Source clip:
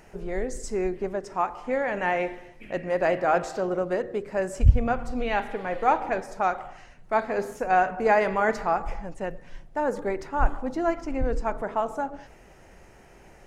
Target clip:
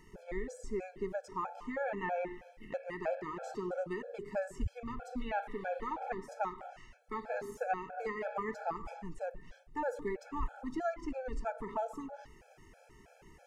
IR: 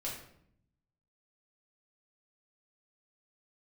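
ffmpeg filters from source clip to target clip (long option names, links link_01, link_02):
-filter_complex "[0:a]acrossover=split=940|1900[link_01][link_02][link_03];[link_01]acompressor=threshold=-28dB:ratio=4[link_04];[link_02]acompressor=threshold=-33dB:ratio=4[link_05];[link_03]acompressor=threshold=-48dB:ratio=4[link_06];[link_04][link_05][link_06]amix=inputs=3:normalize=0,afftfilt=real='re*gt(sin(2*PI*3.1*pts/sr)*(1-2*mod(floor(b*sr/1024/440),2)),0)':imag='im*gt(sin(2*PI*3.1*pts/sr)*(1-2*mod(floor(b*sr/1024/440),2)),0)':win_size=1024:overlap=0.75,volume=-4.5dB"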